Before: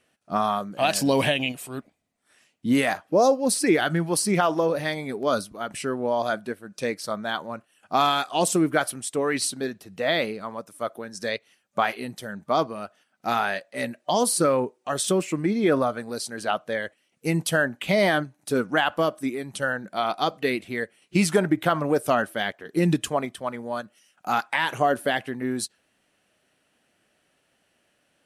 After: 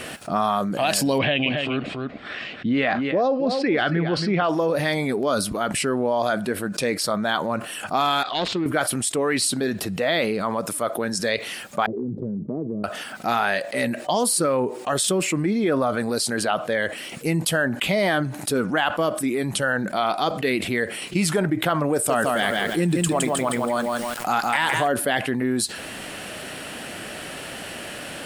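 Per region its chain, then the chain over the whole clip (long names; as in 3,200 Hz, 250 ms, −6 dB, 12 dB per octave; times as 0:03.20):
0:01.18–0:04.49: low-pass filter 3,800 Hz 24 dB per octave + notch filter 920 Hz, Q 7.5 + single-tap delay 276 ms −13.5 dB
0:08.23–0:08.66: phase distortion by the signal itself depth 0.13 ms + transistor ladder low-pass 4,400 Hz, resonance 55%
0:11.86–0:12.84: elliptic band-pass filter 100–420 Hz, stop band 70 dB + downward compressor 3 to 1, threshold −44 dBFS
0:21.93–0:24.88: parametric band 8,300 Hz +10.5 dB 0.4 octaves + feedback echo at a low word length 164 ms, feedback 35%, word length 8 bits, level −5 dB
whole clip: notch filter 6,000 Hz, Q 12; envelope flattener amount 70%; level −3.5 dB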